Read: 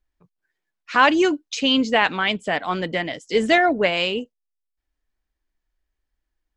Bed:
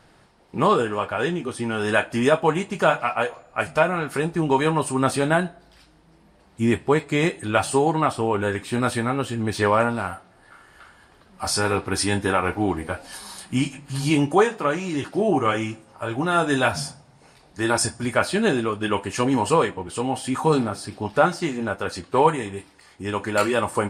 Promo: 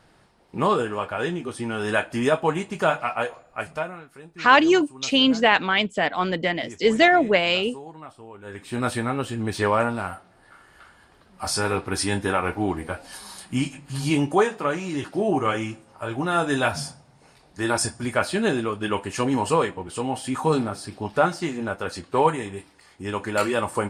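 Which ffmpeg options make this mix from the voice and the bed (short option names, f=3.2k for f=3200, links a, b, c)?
-filter_complex "[0:a]adelay=3500,volume=0.5dB[a];[1:a]volume=16dB,afade=t=out:st=3.34:d=0.73:silence=0.125893,afade=t=in:st=8.42:d=0.45:silence=0.11885[b];[a][b]amix=inputs=2:normalize=0"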